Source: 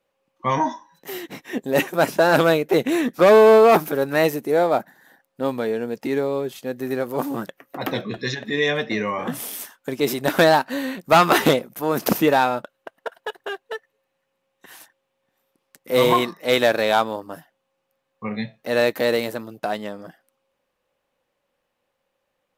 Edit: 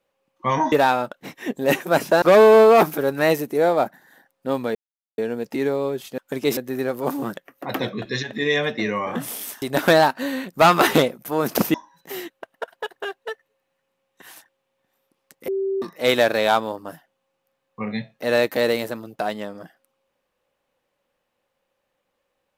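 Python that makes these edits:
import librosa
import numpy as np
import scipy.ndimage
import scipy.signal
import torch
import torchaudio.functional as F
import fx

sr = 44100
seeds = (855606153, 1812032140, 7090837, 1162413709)

y = fx.edit(x, sr, fx.swap(start_s=0.72, length_s=0.56, other_s=12.25, other_length_s=0.49),
    fx.cut(start_s=2.29, length_s=0.87),
    fx.insert_silence(at_s=5.69, length_s=0.43),
    fx.move(start_s=9.74, length_s=0.39, to_s=6.69),
    fx.bleep(start_s=15.92, length_s=0.34, hz=388.0, db=-20.5), tone=tone)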